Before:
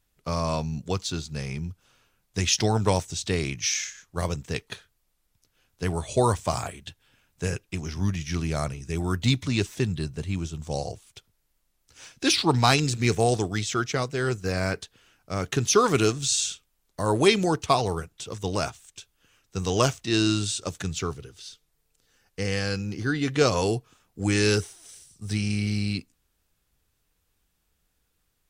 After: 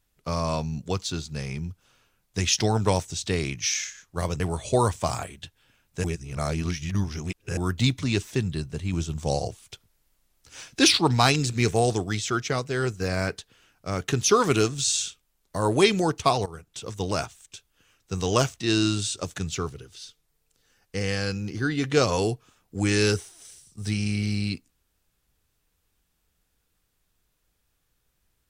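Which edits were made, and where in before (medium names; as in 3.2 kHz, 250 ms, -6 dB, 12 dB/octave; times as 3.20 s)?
4.40–5.84 s: delete
7.48–9.01 s: reverse
10.37–12.41 s: gain +4 dB
17.90–18.23 s: fade in, from -17.5 dB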